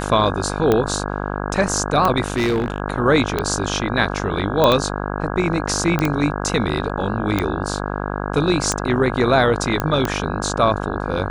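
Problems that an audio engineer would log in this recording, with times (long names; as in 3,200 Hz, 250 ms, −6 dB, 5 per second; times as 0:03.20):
mains buzz 50 Hz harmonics 33 −25 dBFS
scratch tick 45 rpm −5 dBFS
0:02.24–0:02.80: clipping −15 dBFS
0:04.64: click −3 dBFS
0:05.99: click −7 dBFS
0:09.80: click −6 dBFS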